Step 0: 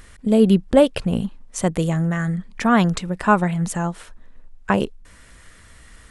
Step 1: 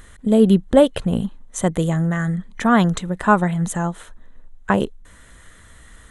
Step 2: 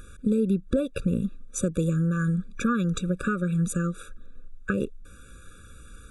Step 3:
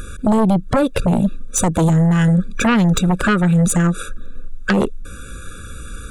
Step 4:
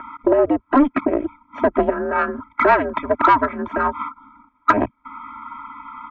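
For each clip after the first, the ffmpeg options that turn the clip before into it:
ffmpeg -i in.wav -af "superequalizer=12b=0.562:14b=0.398,volume=1dB" out.wav
ffmpeg -i in.wav -af "alimiter=limit=-7dB:level=0:latency=1:release=232,acompressor=threshold=-21dB:ratio=4,afftfilt=real='re*eq(mod(floor(b*sr/1024/560),2),0)':imag='im*eq(mod(floor(b*sr/1024/560),2),0)':win_size=1024:overlap=0.75" out.wav
ffmpeg -i in.wav -af "aeval=exprs='0.299*sin(PI/2*3.55*val(0)/0.299)':channel_layout=same" out.wav
ffmpeg -i in.wav -af "highpass=frequency=590:width_type=q:width=0.5412,highpass=frequency=590:width_type=q:width=1.307,lowpass=frequency=2300:width_type=q:width=0.5176,lowpass=frequency=2300:width_type=q:width=0.7071,lowpass=frequency=2300:width_type=q:width=1.932,afreqshift=-280,aecho=1:1:3.1:0.96,aeval=exprs='0.596*(cos(1*acos(clip(val(0)/0.596,-1,1)))-cos(1*PI/2))+0.0237*(cos(5*acos(clip(val(0)/0.596,-1,1)))-cos(5*PI/2))':channel_layout=same,volume=3dB" out.wav

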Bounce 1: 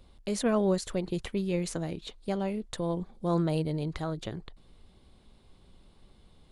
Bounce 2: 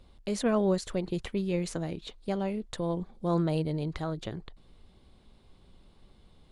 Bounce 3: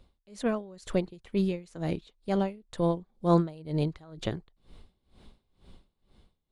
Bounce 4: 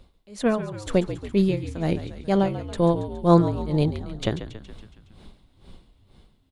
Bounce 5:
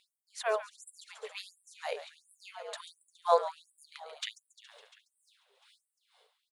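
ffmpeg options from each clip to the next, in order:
ffmpeg -i in.wav -af "highshelf=frequency=10000:gain=-8" out.wav
ffmpeg -i in.wav -af "dynaudnorm=framelen=120:gausssize=13:maxgain=8.5dB,aeval=exprs='val(0)*pow(10,-25*(0.5-0.5*cos(2*PI*2.1*n/s))/20)':channel_layout=same,volume=-2dB" out.wav
ffmpeg -i in.wav -filter_complex "[0:a]asplit=8[link_01][link_02][link_03][link_04][link_05][link_06][link_07][link_08];[link_02]adelay=139,afreqshift=-57,volume=-11.5dB[link_09];[link_03]adelay=278,afreqshift=-114,volume=-15.8dB[link_10];[link_04]adelay=417,afreqshift=-171,volume=-20.1dB[link_11];[link_05]adelay=556,afreqshift=-228,volume=-24.4dB[link_12];[link_06]adelay=695,afreqshift=-285,volume=-28.7dB[link_13];[link_07]adelay=834,afreqshift=-342,volume=-33dB[link_14];[link_08]adelay=973,afreqshift=-399,volume=-37.3dB[link_15];[link_01][link_09][link_10][link_11][link_12][link_13][link_14][link_15]amix=inputs=8:normalize=0,volume=6.5dB" out.wav
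ffmpeg -i in.wav -filter_complex "[0:a]asplit=6[link_01][link_02][link_03][link_04][link_05][link_06];[link_02]adelay=349,afreqshift=-110,volume=-19dB[link_07];[link_03]adelay=698,afreqshift=-220,volume=-23.7dB[link_08];[link_04]adelay=1047,afreqshift=-330,volume=-28.5dB[link_09];[link_05]adelay=1396,afreqshift=-440,volume=-33.2dB[link_10];[link_06]adelay=1745,afreqshift=-550,volume=-37.9dB[link_11];[link_01][link_07][link_08][link_09][link_10][link_11]amix=inputs=6:normalize=0,afftfilt=real='re*gte(b*sr/1024,410*pow(7700/410,0.5+0.5*sin(2*PI*1.4*pts/sr)))':imag='im*gte(b*sr/1024,410*pow(7700/410,0.5+0.5*sin(2*PI*1.4*pts/sr)))':win_size=1024:overlap=0.75,volume=-3dB" out.wav

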